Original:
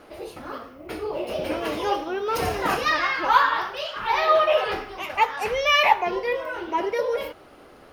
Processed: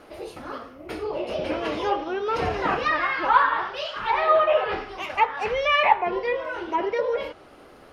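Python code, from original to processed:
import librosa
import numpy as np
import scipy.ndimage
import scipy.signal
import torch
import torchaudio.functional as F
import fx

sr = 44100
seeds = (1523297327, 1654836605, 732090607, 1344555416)

y = fx.env_lowpass_down(x, sr, base_hz=2400.0, full_db=-19.0)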